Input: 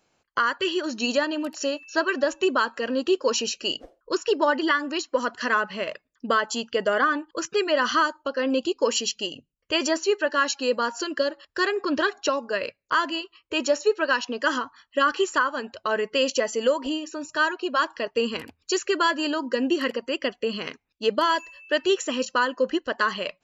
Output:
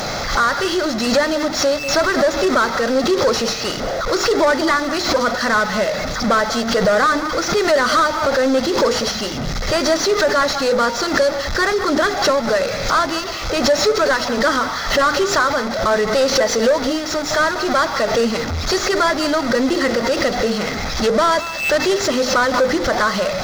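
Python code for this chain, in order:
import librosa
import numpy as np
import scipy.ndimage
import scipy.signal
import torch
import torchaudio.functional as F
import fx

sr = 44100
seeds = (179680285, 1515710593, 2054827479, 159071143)

y = fx.delta_mod(x, sr, bps=32000, step_db=-28.0)
y = fx.peak_eq(y, sr, hz=200.0, db=3.5, octaves=0.3)
y = fx.hum_notches(y, sr, base_hz=50, count=10)
y = y + 0.37 * np.pad(y, (int(1.5 * sr / 1000.0), 0))[:len(y)]
y = y + 10.0 ** (-17.5 / 20.0) * np.pad(y, (int(193 * sr / 1000.0), 0))[:len(y)]
y = fx.leveller(y, sr, passes=3)
y = fx.peak_eq(y, sr, hz=2800.0, db=-12.5, octaves=0.42)
y = fx.pre_swell(y, sr, db_per_s=77.0)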